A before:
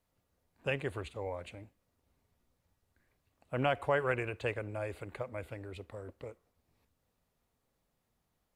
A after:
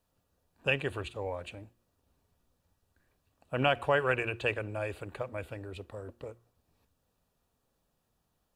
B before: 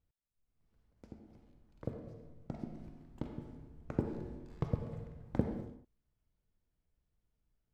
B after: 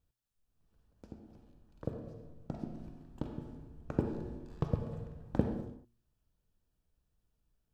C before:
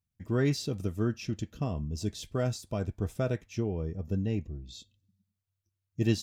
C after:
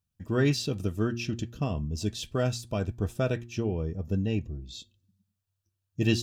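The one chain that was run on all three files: notch 2100 Hz, Q 5.3; de-hum 117.9 Hz, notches 3; dynamic EQ 2600 Hz, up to +7 dB, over -54 dBFS, Q 1.2; gain +2.5 dB

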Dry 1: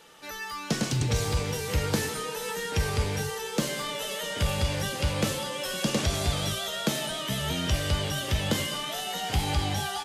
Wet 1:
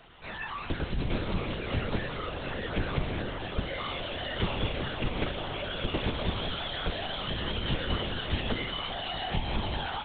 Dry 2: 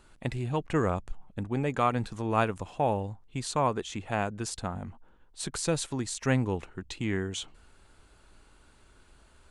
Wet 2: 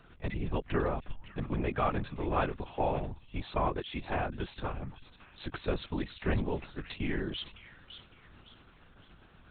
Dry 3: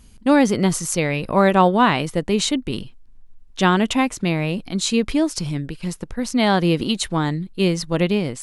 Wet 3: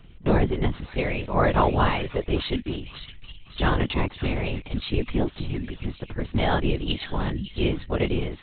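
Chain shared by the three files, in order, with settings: in parallel at +1 dB: compressor, threshold -31 dBFS; on the sum: thin delay 0.556 s, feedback 34%, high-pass 2500 Hz, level -9 dB; LPC vocoder at 8 kHz whisper; gain -6.5 dB

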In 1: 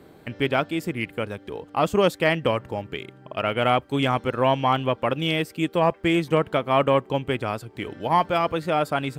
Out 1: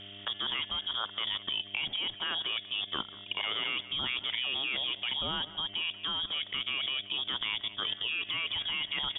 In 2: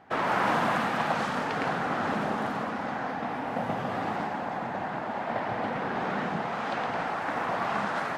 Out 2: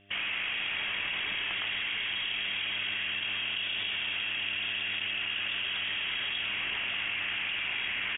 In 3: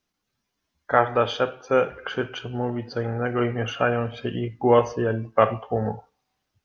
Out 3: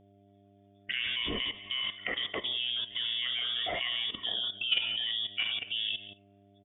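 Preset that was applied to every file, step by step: inverted band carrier 3500 Hz; air absorption 57 m; in parallel at +2.5 dB: negative-ratio compressor -28 dBFS, ratio -1; on the sum: buzz 100 Hz, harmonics 7, -46 dBFS -2 dB/oct; notch 500 Hz, Q 12; on a send: echo 0.184 s -18 dB; on the sum: level quantiser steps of 14 dB; gain -5 dB

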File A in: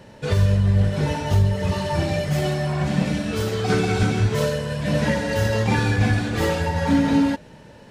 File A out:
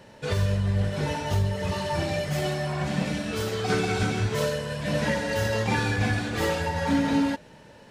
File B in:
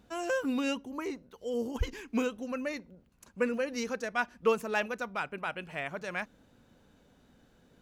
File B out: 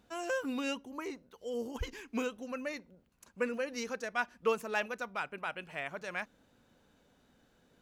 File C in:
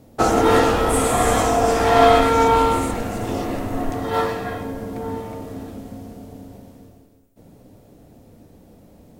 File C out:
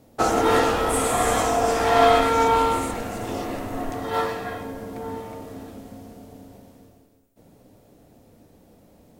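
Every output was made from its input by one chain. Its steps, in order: low shelf 340 Hz -5.5 dB; gain -2 dB

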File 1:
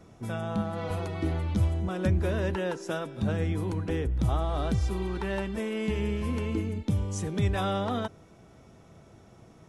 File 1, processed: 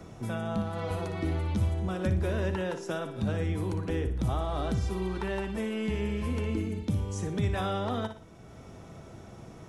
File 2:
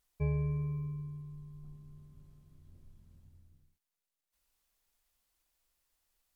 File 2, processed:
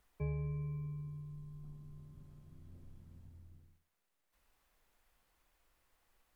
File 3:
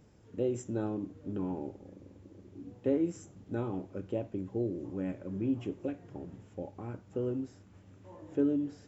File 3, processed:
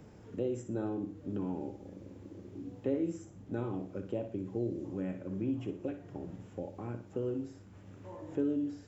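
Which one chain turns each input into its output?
flutter echo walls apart 10.1 m, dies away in 0.36 s; three-band squash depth 40%; gain -2 dB

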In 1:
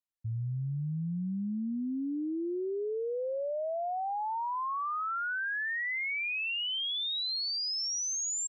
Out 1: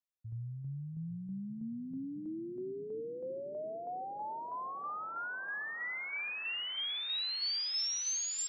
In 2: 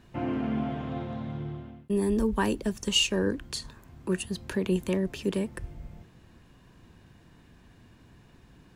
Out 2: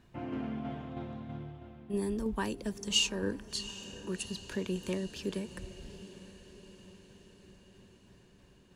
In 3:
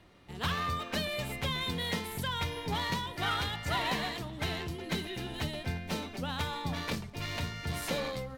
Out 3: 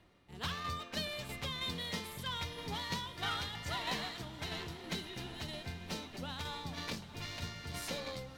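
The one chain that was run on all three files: dynamic EQ 5200 Hz, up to +6 dB, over -50 dBFS, Q 0.9; tremolo saw down 3.1 Hz, depth 45%; on a send: diffused feedback echo 0.753 s, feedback 59%, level -14.5 dB; on the sum: gain -5.5 dB

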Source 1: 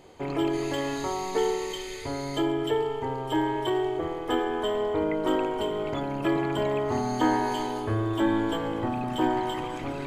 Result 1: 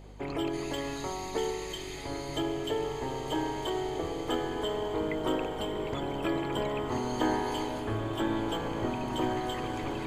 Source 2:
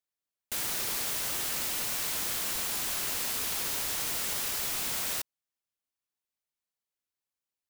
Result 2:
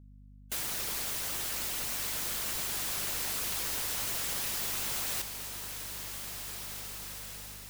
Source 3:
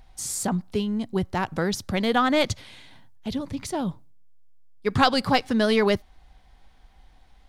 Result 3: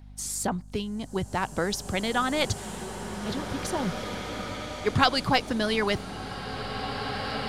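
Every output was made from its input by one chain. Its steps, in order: harmonic-percussive split harmonic -7 dB; hum 50 Hz, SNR 16 dB; bloom reverb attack 2.3 s, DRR 5.5 dB

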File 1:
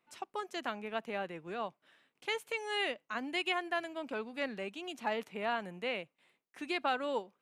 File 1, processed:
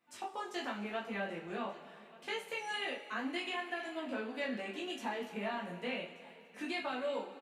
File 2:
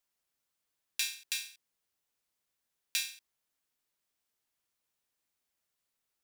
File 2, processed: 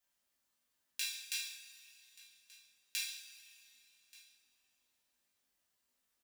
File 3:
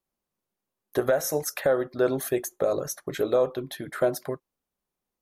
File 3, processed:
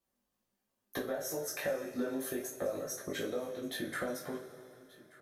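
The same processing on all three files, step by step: chorus 2.8 Hz, delay 18 ms, depth 2.2 ms; compressor 5:1, threshold -40 dBFS; echo 1.181 s -21.5 dB; two-slope reverb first 0.28 s, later 2.9 s, from -19 dB, DRR -2.5 dB; gain +1 dB

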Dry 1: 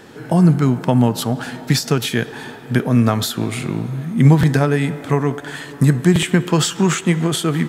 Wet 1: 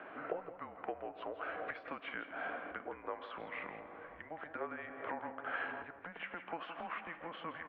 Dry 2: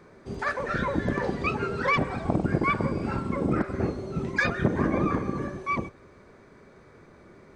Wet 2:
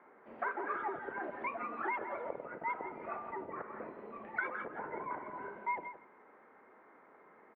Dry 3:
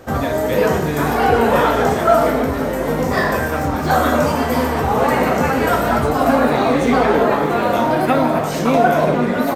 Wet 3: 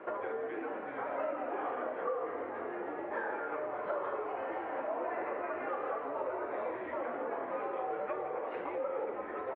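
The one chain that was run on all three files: bell 710 Hz +4 dB 1.7 oct; compressor 12:1, threshold -26 dBFS; mistuned SSB -170 Hz 600–2600 Hz; echo 0.167 s -11.5 dB; gain -5 dB

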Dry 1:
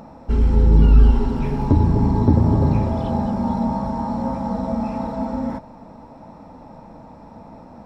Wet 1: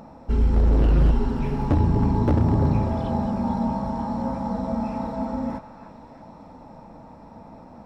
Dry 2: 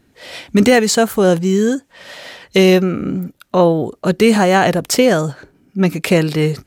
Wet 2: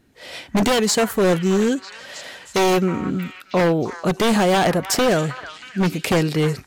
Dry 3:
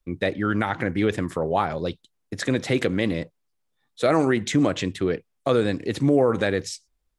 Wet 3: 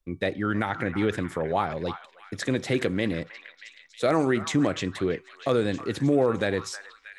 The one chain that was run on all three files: resonator 380 Hz, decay 0.59 s, mix 30%; wavefolder -11.5 dBFS; delay with a stepping band-pass 0.316 s, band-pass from 1300 Hz, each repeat 0.7 oct, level -8 dB

